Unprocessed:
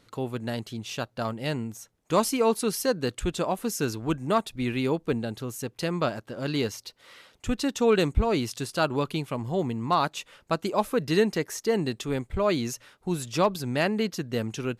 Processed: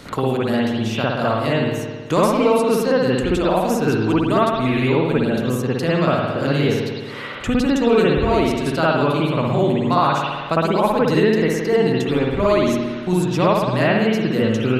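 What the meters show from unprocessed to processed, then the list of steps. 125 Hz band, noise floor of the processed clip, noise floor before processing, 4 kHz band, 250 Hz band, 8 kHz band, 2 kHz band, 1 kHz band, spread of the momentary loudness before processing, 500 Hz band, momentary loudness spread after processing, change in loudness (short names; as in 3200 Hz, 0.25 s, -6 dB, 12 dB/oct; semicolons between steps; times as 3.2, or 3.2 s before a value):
+10.5 dB, -30 dBFS, -64 dBFS, +6.5 dB, +10.5 dB, 0.0 dB, +10.0 dB, +9.0 dB, 10 LU, +9.5 dB, 5 LU, +9.5 dB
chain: spring tank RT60 1 s, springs 55 ms, chirp 55 ms, DRR -8.5 dB; three-band squash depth 70%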